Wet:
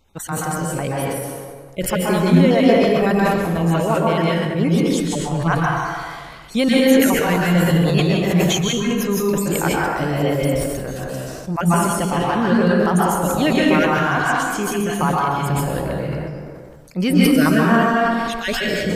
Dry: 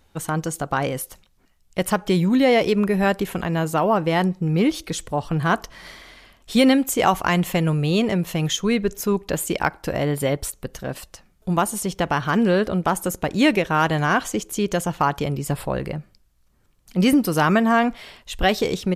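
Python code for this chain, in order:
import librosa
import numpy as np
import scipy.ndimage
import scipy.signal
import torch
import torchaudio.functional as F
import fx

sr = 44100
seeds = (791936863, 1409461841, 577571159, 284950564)

y = fx.spec_dropout(x, sr, seeds[0], share_pct=32)
y = fx.rev_plate(y, sr, seeds[1], rt60_s=1.5, hf_ratio=0.6, predelay_ms=115, drr_db=-4.5)
y = fx.sustainer(y, sr, db_per_s=30.0)
y = y * 10.0 ** (-2.5 / 20.0)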